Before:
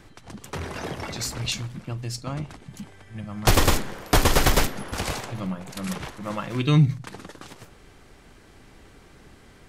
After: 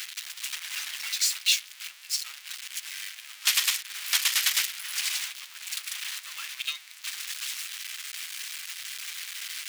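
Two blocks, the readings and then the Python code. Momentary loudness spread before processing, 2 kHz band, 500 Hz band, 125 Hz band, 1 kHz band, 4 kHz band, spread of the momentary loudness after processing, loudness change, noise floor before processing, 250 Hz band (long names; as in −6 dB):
22 LU, −0.5 dB, below −35 dB, below −40 dB, −16.5 dB, +4.0 dB, 13 LU, −3.5 dB, −51 dBFS, below −40 dB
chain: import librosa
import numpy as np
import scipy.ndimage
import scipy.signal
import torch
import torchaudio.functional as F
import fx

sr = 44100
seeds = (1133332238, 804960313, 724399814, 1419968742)

y = x + 0.5 * 10.0 ** (-20.5 / 20.0) * np.sign(x)
y = fx.ladder_highpass(y, sr, hz=1800.0, resonance_pct=20)
y = fx.upward_expand(y, sr, threshold_db=-44.0, expansion=1.5)
y = y * 10.0 ** (5.5 / 20.0)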